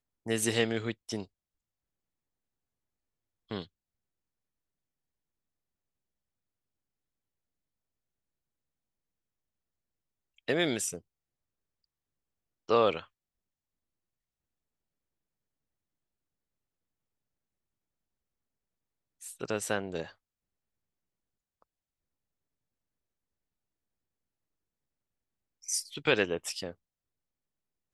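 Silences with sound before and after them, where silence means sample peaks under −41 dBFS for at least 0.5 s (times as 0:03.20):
0:01.24–0:03.51
0:03.64–0:10.48
0:10.99–0:12.69
0:13.03–0:19.22
0:20.09–0:25.64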